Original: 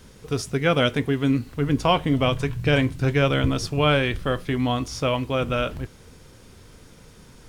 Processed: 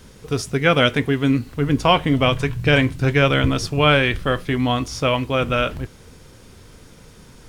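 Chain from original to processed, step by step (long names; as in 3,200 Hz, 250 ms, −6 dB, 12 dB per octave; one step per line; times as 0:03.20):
dynamic equaliser 2,000 Hz, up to +4 dB, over −33 dBFS, Q 0.86
level +3 dB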